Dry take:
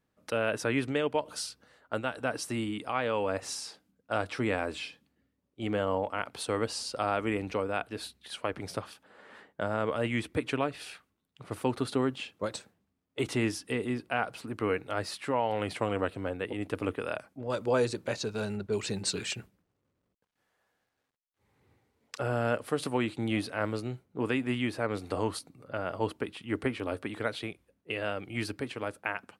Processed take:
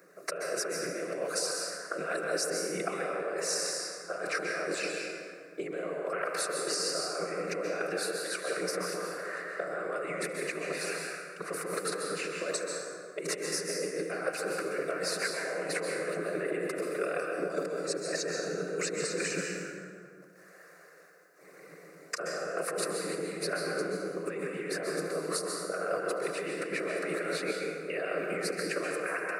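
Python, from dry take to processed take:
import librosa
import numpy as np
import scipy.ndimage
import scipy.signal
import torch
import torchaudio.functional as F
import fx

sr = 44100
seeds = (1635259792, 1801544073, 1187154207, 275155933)

y = fx.high_shelf(x, sr, hz=9500.0, db=-9.5)
y = y + 10.0 ** (-19.0 / 20.0) * np.pad(y, (int(74 * sr / 1000.0), 0))[:len(y)]
y = fx.over_compress(y, sr, threshold_db=-39.0, ratio=-1.0)
y = fx.whisperise(y, sr, seeds[0])
y = scipy.signal.sosfilt(scipy.signal.ellip(4, 1.0, 40, 170.0, 'highpass', fs=sr, output='sos'), y)
y = fx.bass_treble(y, sr, bass_db=2, treble_db=3)
y = fx.fixed_phaser(y, sr, hz=880.0, stages=6)
y = fx.rev_plate(y, sr, seeds[1], rt60_s=1.6, hf_ratio=0.55, predelay_ms=115, drr_db=1.0)
y = fx.band_squash(y, sr, depth_pct=40)
y = F.gain(torch.from_numpy(y), 6.5).numpy()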